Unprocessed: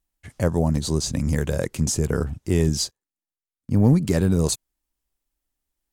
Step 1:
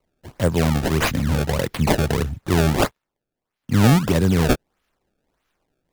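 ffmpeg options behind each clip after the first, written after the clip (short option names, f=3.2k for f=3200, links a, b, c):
-filter_complex "[0:a]highshelf=f=5.4k:g=10.5,acrossover=split=110[a][b];[b]acrusher=samples=25:mix=1:aa=0.000001:lfo=1:lforange=40:lforate=1.6[c];[a][c]amix=inputs=2:normalize=0,volume=2dB"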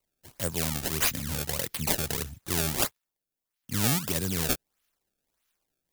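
-af "crystalizer=i=6:c=0,volume=-14.5dB"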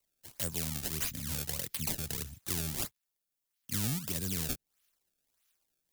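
-filter_complex "[0:a]acrossover=split=280[a][b];[b]acompressor=threshold=-31dB:ratio=6[c];[a][c]amix=inputs=2:normalize=0,highshelf=f=2.2k:g=8,volume=-5.5dB"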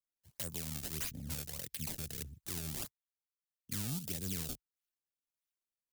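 -af "afwtdn=0.00447,alimiter=limit=-17dB:level=0:latency=1:release=143,volume=-2.5dB"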